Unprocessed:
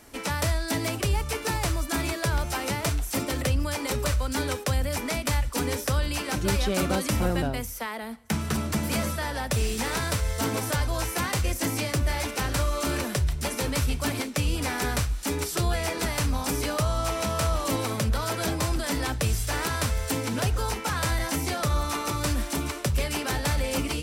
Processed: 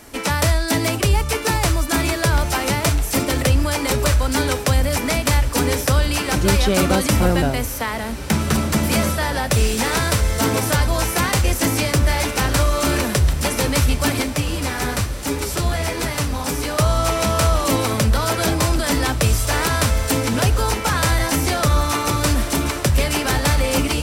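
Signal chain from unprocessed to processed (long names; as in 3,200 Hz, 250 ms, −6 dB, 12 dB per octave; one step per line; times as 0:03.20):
0:14.34–0:16.78: flanger 1.1 Hz, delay 6 ms, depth 7.9 ms, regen +42%
feedback delay with all-pass diffusion 1,911 ms, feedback 58%, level −15 dB
level +8.5 dB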